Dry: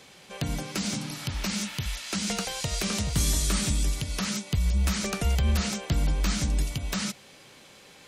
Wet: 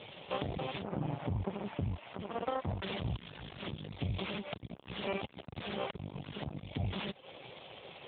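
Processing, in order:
wavefolder on the positive side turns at −28.5 dBFS
0:00.82–0:02.83: low-pass filter 1,300 Hz 12 dB per octave
reverb reduction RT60 0.51 s
low-shelf EQ 110 Hz +5 dB
downward compressor 10 to 1, threshold −32 dBFS, peak gain reduction 14 dB
phaser with its sweep stopped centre 620 Hz, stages 4
half-wave rectification
level +15 dB
AMR narrowband 7.95 kbit/s 8,000 Hz

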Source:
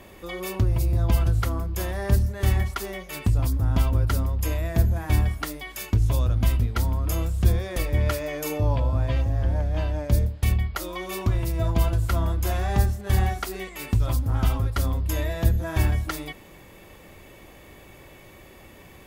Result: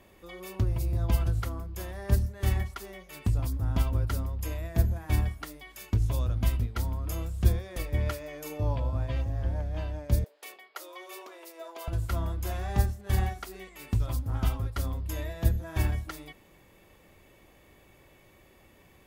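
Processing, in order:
0:10.24–0:11.88: Butterworth high-pass 380 Hz 36 dB per octave
expander for the loud parts 1.5 to 1, over −29 dBFS
level −2.5 dB

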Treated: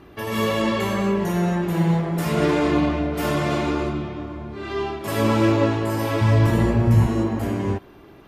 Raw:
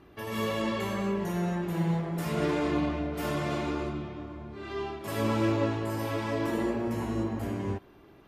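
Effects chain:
0:06.21–0:07.07: low shelf with overshoot 200 Hz +11.5 dB, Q 1.5
level +8.5 dB

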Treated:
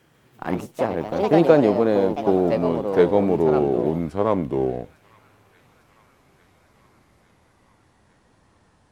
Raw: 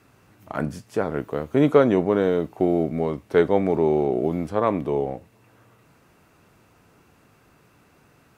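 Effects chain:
gliding playback speed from 122% → 66%
delay with pitch and tempo change per echo 147 ms, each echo +4 semitones, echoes 2, each echo −6 dB
on a send: delay with a high-pass on its return 852 ms, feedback 69%, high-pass 1,800 Hz, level −19 dB
on the sum: dynamic equaliser 1,700 Hz, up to −6 dB, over −40 dBFS, Q 1.2
in parallel at −4 dB: slack as between gear wheels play −27 dBFS
on the sum: level −2.5 dB

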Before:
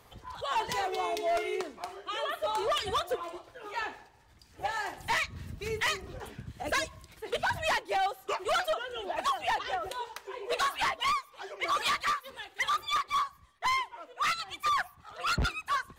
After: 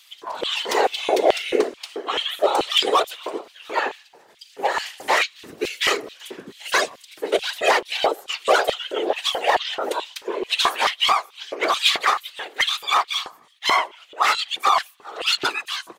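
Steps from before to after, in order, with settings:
random phases in short frames
pitch-shifted copies added −7 semitones −9 dB, −4 semitones −16 dB
auto-filter high-pass square 2.3 Hz 400–3,100 Hz
level +9 dB

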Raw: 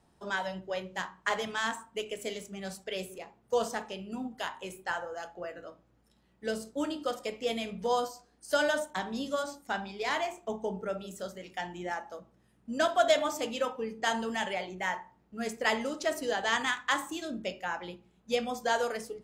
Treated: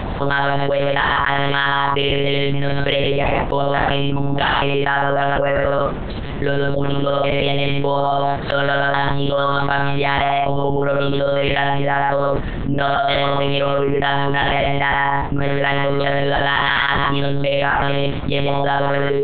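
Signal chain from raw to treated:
reverb whose tail is shaped and stops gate 170 ms flat, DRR 4 dB
one-pitch LPC vocoder at 8 kHz 140 Hz
envelope flattener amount 100%
level +2.5 dB

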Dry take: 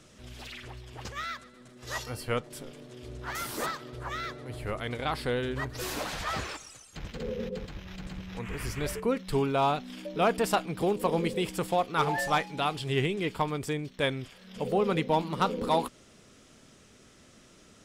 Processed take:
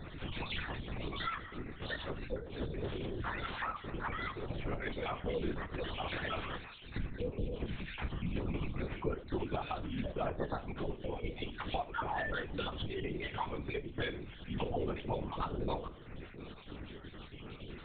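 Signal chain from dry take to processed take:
time-frequency cells dropped at random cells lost 38%
low-shelf EQ 130 Hz +8 dB
mains-hum notches 60/120/180/240/300/360/420/480 Hz
downward compressor 8 to 1, threshold −44 dBFS, peak gain reduction 23 dB
flanger 1.7 Hz, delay 5.1 ms, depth 4.7 ms, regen +65%
convolution reverb, pre-delay 4 ms, DRR 7 dB
linear-prediction vocoder at 8 kHz whisper
level +12.5 dB

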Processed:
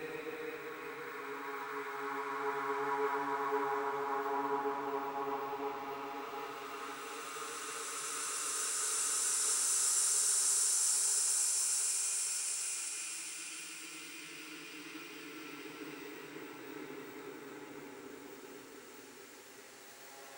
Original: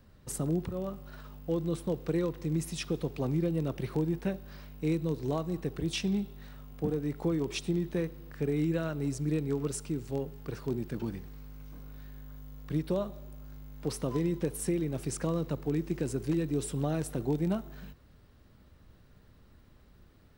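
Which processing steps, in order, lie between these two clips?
auto-filter high-pass saw down 5 Hz 750–2,400 Hz
extreme stretch with random phases 32×, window 0.25 s, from 0:09.43
multiband upward and downward expander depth 40%
level +6 dB

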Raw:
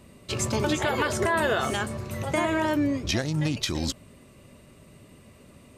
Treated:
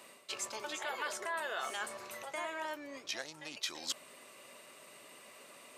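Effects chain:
reversed playback
downward compressor 6 to 1, threshold −38 dBFS, peak gain reduction 16 dB
reversed playback
high-pass filter 700 Hz 12 dB per octave
level +4 dB

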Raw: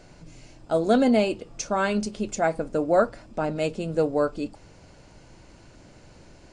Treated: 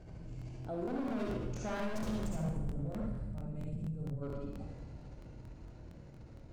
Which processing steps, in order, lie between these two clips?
source passing by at 0:02.13, 13 m/s, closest 3.1 metres
high-pass filter 50 Hz 12 dB per octave
spectral tilt −3 dB per octave
transient designer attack −5 dB, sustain +12 dB
gain on a spectral selection 0:02.15–0:04.22, 230–7,300 Hz −13 dB
hard clipping −31 dBFS, distortion −4 dB
low-shelf EQ 110 Hz +7.5 dB
convolution reverb RT60 0.75 s, pre-delay 50 ms, DRR −2 dB
downward compressor 2.5 to 1, threshold −50 dBFS, peak gain reduction 18.5 dB
regular buffer underruns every 0.23 s, samples 1,024, repeat, from 0:00.37
level +7.5 dB

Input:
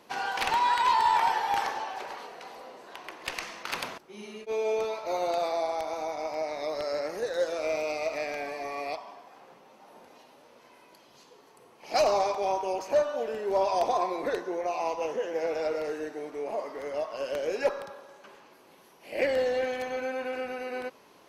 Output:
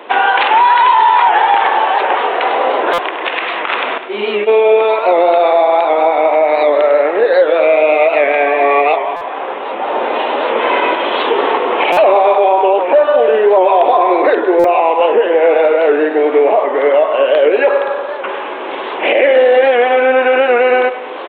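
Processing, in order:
camcorder AGC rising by 11 dB per second
high-pass filter 320 Hz 24 dB per octave
in parallel at −0.5 dB: downward compressor, threshold −37 dBFS, peak gain reduction 16.5 dB
on the sum: high-frequency loss of the air 120 metres
repeating echo 101 ms, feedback 49%, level −12.5 dB
on a send at −21.5 dB: convolution reverb RT60 3.5 s, pre-delay 3 ms
on the sum: downsampling to 8,000 Hz
boost into a limiter +19.5 dB
buffer that repeats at 0:02.93/0:09.16/0:11.92/0:14.59, samples 256, times 8
wow of a warped record 78 rpm, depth 100 cents
level −1 dB

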